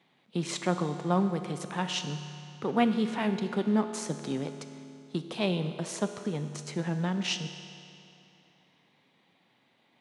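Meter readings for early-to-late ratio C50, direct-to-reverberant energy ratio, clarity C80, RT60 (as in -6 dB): 9.0 dB, 8.0 dB, 10.0 dB, 2.7 s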